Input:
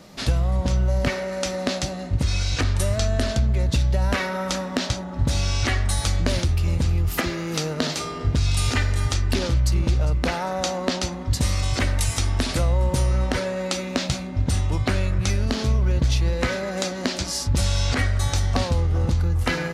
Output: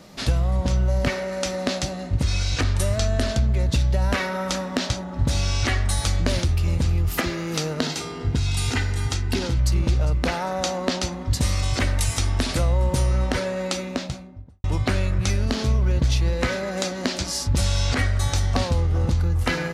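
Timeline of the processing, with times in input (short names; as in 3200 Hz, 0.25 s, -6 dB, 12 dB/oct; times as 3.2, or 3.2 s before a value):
7.81–9.59 notch comb 590 Hz
13.64–14.64 studio fade out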